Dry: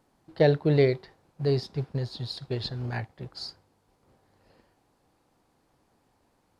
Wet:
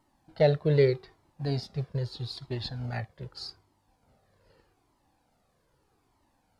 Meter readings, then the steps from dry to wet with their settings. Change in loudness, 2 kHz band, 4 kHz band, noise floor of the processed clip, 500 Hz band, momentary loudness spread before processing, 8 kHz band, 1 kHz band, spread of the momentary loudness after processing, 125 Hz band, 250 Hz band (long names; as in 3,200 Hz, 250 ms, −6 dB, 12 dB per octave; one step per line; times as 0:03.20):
−1.5 dB, −3.0 dB, −2.5 dB, −72 dBFS, −1.5 dB, 16 LU, can't be measured, −1.5 dB, 17 LU, −1.5 dB, −4.0 dB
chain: flanger whose copies keep moving one way falling 0.81 Hz
level +2.5 dB